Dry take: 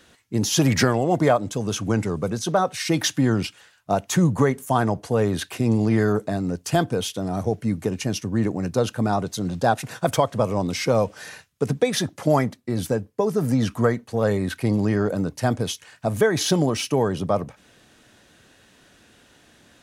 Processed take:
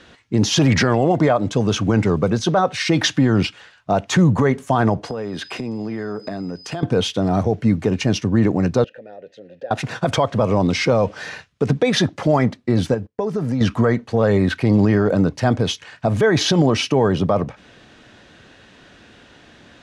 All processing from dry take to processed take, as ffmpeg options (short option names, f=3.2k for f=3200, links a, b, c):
-filter_complex "[0:a]asettb=1/sr,asplit=3[a][b][c];[a]atrim=end=5.044[d];[b]atrim=start=5.04:end=6.83,asetpts=PTS-STARTPTS,afade=t=in:d=0.004:c=qsin,afade=t=out:st=1.786:d=0.004:c=qsin,highpass=150,aeval=exprs='val(0)+0.00631*sin(2*PI*5000*n/s)':c=same,acompressor=threshold=-31dB:ratio=10:attack=3.2:release=140:knee=1:detection=peak[e];[c]atrim=start=6.826[f];[d][e]acrossfade=d=0.004:c1=hsin:c2=qsin[g];[g][f]acrossfade=d=0.004:c1=qsin:c2=hsin,asettb=1/sr,asplit=3[h][i][j];[h]atrim=end=8.844[k];[i]atrim=start=8.84:end=9.71,asetpts=PTS-STARTPTS,afade=t=in:d=0.004:c=qsin,afade=t=out:st=0.866:d=0.004:c=qsin,acrusher=bits=9:mode=log:mix=0:aa=0.000001,acompressor=threshold=-29dB:ratio=4:attack=3.2:release=140:knee=1:detection=peak,asplit=3[l][m][n];[l]bandpass=f=530:t=q:w=8,volume=0dB[o];[m]bandpass=f=1.84k:t=q:w=8,volume=-6dB[p];[n]bandpass=f=2.48k:t=q:w=8,volume=-9dB[q];[o][p][q]amix=inputs=3:normalize=0[r];[j]atrim=start=9.706[s];[k][r]acrossfade=d=0.004:c1=hsin:c2=qsin[t];[t][s]acrossfade=d=0.004:c1=qsin:c2=hsin,asettb=1/sr,asplit=3[u][v][w];[u]atrim=end=12.944[x];[v]atrim=start=12.94:end=13.61,asetpts=PTS-STARTPTS,afade=t=in:d=0.004:c=qsin,afade=t=out:st=0.666:d=0.004:c=qsin,agate=range=-19dB:threshold=-41dB:ratio=16:release=100:detection=peak,acompressor=threshold=-30dB:ratio=2.5:attack=3.2:release=140:knee=1:detection=peak[y];[w]atrim=start=13.606[z];[x][y]acrossfade=d=0.004:c1=hsin:c2=qsin[aa];[aa][z]acrossfade=d=0.004:c1=qsin:c2=hsin,lowpass=4.4k,alimiter=level_in=14dB:limit=-1dB:release=50:level=0:latency=1,volume=-6dB"